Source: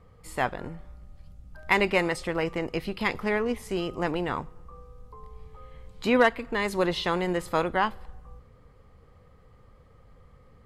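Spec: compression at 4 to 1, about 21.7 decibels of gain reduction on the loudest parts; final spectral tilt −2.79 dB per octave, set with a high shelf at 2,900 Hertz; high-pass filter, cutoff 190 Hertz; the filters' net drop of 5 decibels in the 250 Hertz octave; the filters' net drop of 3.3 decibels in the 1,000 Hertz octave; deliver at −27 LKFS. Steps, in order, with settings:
high-pass filter 190 Hz
parametric band 250 Hz −5 dB
parametric band 1,000 Hz −5 dB
high-shelf EQ 2,900 Hz +8.5 dB
downward compressor 4 to 1, threshold −44 dBFS
level +18.5 dB

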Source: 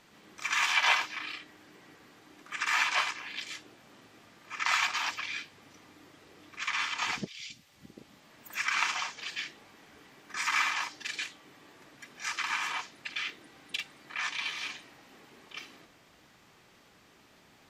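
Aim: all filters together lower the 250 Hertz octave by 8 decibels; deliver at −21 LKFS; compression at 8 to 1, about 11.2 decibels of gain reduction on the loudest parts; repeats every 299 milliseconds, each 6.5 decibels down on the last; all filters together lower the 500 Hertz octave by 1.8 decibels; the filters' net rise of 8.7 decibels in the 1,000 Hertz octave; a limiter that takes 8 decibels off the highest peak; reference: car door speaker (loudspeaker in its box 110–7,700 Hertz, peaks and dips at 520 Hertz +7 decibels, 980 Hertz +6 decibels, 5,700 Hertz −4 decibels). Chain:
parametric band 250 Hz −9 dB
parametric band 500 Hz −8.5 dB
parametric band 1,000 Hz +8 dB
downward compressor 8 to 1, threshold −31 dBFS
brickwall limiter −26 dBFS
loudspeaker in its box 110–7,700 Hz, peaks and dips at 520 Hz +7 dB, 980 Hz +6 dB, 5,700 Hz −4 dB
repeating echo 299 ms, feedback 47%, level −6.5 dB
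level +15.5 dB

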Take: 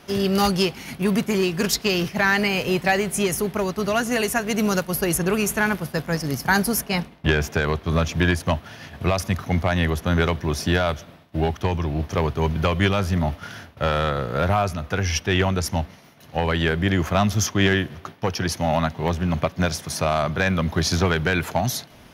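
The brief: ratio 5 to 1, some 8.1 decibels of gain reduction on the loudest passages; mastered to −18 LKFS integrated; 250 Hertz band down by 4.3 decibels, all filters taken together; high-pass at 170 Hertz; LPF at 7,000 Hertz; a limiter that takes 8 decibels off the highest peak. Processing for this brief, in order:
high-pass filter 170 Hz
low-pass filter 7,000 Hz
parametric band 250 Hz −4 dB
downward compressor 5 to 1, threshold −25 dBFS
level +13.5 dB
brickwall limiter −6 dBFS

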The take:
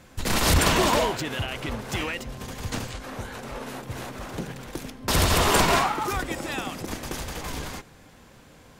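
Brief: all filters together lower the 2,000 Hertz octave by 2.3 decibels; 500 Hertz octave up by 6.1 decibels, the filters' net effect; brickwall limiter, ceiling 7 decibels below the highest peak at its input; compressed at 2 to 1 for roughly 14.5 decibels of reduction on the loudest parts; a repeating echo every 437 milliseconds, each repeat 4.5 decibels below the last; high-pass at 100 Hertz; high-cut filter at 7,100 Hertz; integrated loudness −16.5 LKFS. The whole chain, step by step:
high-pass filter 100 Hz
low-pass filter 7,100 Hz
parametric band 500 Hz +8 dB
parametric band 2,000 Hz −3.5 dB
downward compressor 2 to 1, threshold −42 dBFS
brickwall limiter −27.5 dBFS
repeating echo 437 ms, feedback 60%, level −4.5 dB
level +20.5 dB

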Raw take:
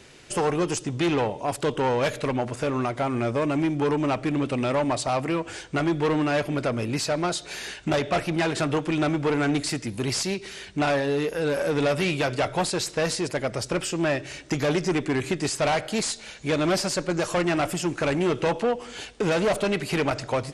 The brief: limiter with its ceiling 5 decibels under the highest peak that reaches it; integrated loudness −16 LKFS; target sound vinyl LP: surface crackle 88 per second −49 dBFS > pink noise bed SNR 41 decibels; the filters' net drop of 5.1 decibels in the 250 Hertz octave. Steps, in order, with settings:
parametric band 250 Hz −7.5 dB
brickwall limiter −19.5 dBFS
surface crackle 88 per second −49 dBFS
pink noise bed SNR 41 dB
level +13 dB

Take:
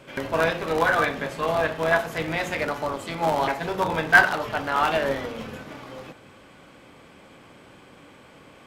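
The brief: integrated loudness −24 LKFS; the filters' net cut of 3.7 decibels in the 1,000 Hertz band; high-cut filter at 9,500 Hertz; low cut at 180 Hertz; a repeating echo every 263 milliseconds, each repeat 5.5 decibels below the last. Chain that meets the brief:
high-pass filter 180 Hz
low-pass filter 9,500 Hz
parametric band 1,000 Hz −5 dB
repeating echo 263 ms, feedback 53%, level −5.5 dB
level +0.5 dB

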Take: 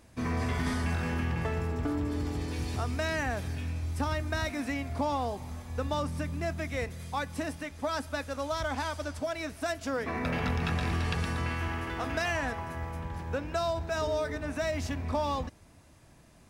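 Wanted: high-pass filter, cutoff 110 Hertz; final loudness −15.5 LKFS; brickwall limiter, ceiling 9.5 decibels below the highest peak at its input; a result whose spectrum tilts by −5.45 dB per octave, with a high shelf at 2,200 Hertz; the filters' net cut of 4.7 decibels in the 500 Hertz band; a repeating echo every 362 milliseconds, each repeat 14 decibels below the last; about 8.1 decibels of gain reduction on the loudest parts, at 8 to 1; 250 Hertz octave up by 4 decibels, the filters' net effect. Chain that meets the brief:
high-pass filter 110 Hz
parametric band 250 Hz +7 dB
parametric band 500 Hz −7.5 dB
high-shelf EQ 2,200 Hz −4 dB
downward compressor 8 to 1, threshold −34 dBFS
brickwall limiter −33.5 dBFS
repeating echo 362 ms, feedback 20%, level −14 dB
level +26.5 dB

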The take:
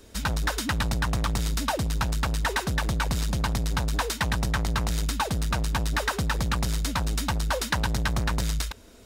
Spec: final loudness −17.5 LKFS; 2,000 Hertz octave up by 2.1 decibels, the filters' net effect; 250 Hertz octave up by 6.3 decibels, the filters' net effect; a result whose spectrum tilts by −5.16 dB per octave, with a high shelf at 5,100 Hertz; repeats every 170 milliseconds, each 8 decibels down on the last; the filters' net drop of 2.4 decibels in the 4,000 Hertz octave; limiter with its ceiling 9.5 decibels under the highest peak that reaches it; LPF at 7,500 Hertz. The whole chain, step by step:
low-pass filter 7,500 Hz
parametric band 250 Hz +9 dB
parametric band 2,000 Hz +3 dB
parametric band 4,000 Hz −7.5 dB
high-shelf EQ 5,100 Hz +8.5 dB
brickwall limiter −20 dBFS
repeating echo 170 ms, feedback 40%, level −8 dB
level +10.5 dB

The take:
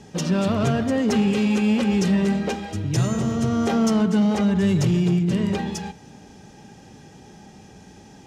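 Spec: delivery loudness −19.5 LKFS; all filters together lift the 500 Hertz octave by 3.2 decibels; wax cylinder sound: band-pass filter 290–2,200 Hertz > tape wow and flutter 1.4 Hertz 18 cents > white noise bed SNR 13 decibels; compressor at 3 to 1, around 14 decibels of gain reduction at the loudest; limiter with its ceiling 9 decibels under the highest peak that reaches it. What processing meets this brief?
parametric band 500 Hz +5 dB
downward compressor 3 to 1, threshold −35 dBFS
brickwall limiter −31.5 dBFS
band-pass filter 290–2,200 Hz
tape wow and flutter 1.4 Hz 18 cents
white noise bed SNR 13 dB
level +24 dB

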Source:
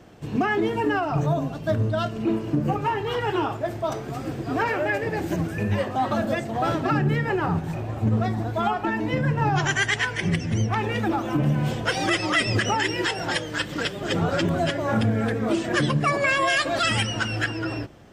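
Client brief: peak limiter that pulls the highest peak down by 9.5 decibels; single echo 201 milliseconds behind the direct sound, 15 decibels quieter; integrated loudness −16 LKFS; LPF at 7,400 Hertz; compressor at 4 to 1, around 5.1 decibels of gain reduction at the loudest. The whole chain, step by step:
low-pass filter 7,400 Hz
downward compressor 4 to 1, threshold −24 dBFS
brickwall limiter −24 dBFS
single-tap delay 201 ms −15 dB
level +16 dB

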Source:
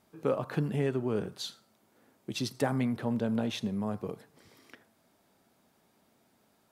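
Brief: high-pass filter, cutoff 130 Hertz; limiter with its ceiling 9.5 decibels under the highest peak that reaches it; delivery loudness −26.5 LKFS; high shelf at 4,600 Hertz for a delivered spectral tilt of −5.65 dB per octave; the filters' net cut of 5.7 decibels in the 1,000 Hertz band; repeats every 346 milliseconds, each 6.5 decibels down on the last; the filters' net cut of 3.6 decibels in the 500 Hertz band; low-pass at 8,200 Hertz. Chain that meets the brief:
high-pass filter 130 Hz
low-pass filter 8,200 Hz
parametric band 500 Hz −3 dB
parametric band 1,000 Hz −6.5 dB
high-shelf EQ 4,600 Hz −3.5 dB
brickwall limiter −27.5 dBFS
repeating echo 346 ms, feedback 47%, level −6.5 dB
level +11 dB

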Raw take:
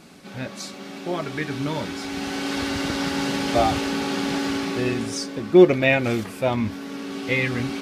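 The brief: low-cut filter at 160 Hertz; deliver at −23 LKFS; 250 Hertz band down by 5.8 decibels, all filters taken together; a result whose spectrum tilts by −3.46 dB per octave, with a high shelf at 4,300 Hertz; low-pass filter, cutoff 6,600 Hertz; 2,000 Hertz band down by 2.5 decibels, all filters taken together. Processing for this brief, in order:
high-pass filter 160 Hz
low-pass filter 6,600 Hz
parametric band 250 Hz −8 dB
parametric band 2,000 Hz −5 dB
high-shelf EQ 4,300 Hz +9 dB
level +3 dB

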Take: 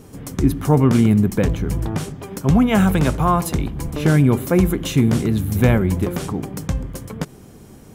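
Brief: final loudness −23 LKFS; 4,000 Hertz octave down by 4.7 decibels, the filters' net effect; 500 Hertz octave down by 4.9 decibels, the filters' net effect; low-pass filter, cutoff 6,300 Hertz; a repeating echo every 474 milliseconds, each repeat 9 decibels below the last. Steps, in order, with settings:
low-pass filter 6,300 Hz
parametric band 500 Hz −6.5 dB
parametric band 4,000 Hz −6 dB
repeating echo 474 ms, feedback 35%, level −9 dB
level −4 dB

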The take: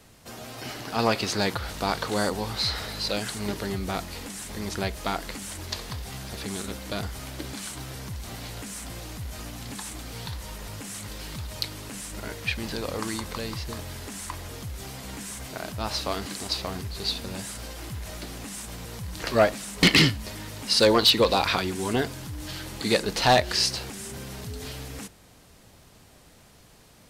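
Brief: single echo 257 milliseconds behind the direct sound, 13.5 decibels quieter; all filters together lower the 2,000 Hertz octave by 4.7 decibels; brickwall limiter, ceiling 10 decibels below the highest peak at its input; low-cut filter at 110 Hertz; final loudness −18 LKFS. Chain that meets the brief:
high-pass filter 110 Hz
parametric band 2,000 Hz −6 dB
brickwall limiter −17 dBFS
single-tap delay 257 ms −13.5 dB
level +14 dB

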